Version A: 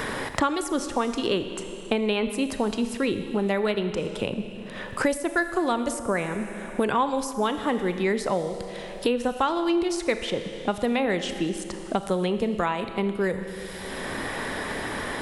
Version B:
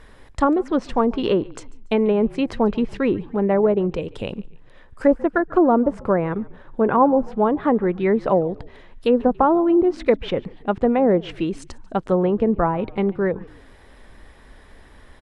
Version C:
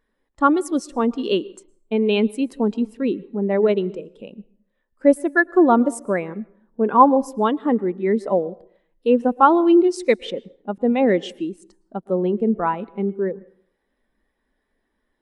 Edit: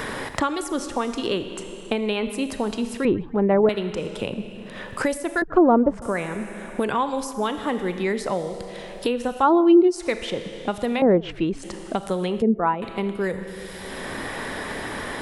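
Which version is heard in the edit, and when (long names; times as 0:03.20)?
A
0:03.05–0:03.69: punch in from B
0:05.42–0:06.02: punch in from B
0:09.46–0:09.99: punch in from C, crossfade 0.16 s
0:11.02–0:11.63: punch in from B
0:12.42–0:12.82: punch in from C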